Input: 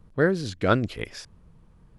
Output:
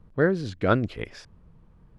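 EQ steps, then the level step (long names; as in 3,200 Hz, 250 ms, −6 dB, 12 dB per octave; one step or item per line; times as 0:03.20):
low-pass filter 2,600 Hz 6 dB per octave
0.0 dB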